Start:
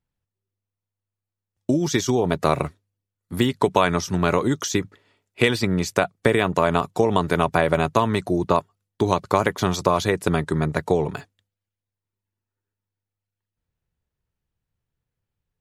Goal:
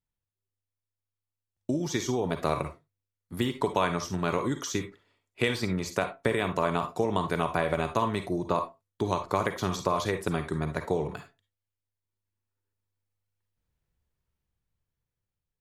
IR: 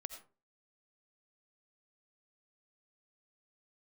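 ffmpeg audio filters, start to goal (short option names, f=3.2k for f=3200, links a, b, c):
-filter_complex "[0:a]dynaudnorm=f=480:g=7:m=9dB[a];[1:a]atrim=start_sample=2205,asetrate=74970,aresample=44100[b];[a][b]afir=irnorm=-1:irlink=0"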